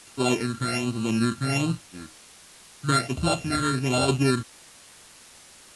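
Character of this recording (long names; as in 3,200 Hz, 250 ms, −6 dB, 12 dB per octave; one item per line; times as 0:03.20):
a buzz of ramps at a fixed pitch in blocks of 32 samples
phaser sweep stages 8, 1.3 Hz, lowest notch 750–1,900 Hz
a quantiser's noise floor 8 bits, dither triangular
AAC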